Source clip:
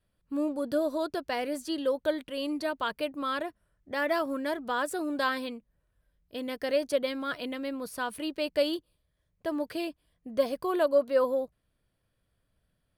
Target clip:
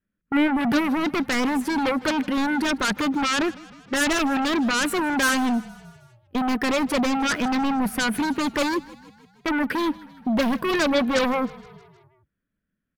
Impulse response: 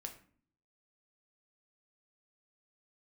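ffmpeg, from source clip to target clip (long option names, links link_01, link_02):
-filter_complex "[0:a]agate=range=-23dB:threshold=-44dB:ratio=16:detection=peak,firequalizer=gain_entry='entry(130,0);entry(200,14);entry(490,1);entry(810,-6);entry(1500,10);entry(4400,-11);entry(12000,-2)':delay=0.05:min_phase=1,asplit=2[link_01][link_02];[link_02]aeval=exprs='0.168*sin(PI/2*5.01*val(0)/0.168)':channel_layout=same,volume=-7.5dB[link_03];[link_01][link_03]amix=inputs=2:normalize=0,asplit=6[link_04][link_05][link_06][link_07][link_08][link_09];[link_05]adelay=156,afreqshift=-30,volume=-20.5dB[link_10];[link_06]adelay=312,afreqshift=-60,volume=-25.1dB[link_11];[link_07]adelay=468,afreqshift=-90,volume=-29.7dB[link_12];[link_08]adelay=624,afreqshift=-120,volume=-34.2dB[link_13];[link_09]adelay=780,afreqshift=-150,volume=-38.8dB[link_14];[link_04][link_10][link_11][link_12][link_13][link_14]amix=inputs=6:normalize=0"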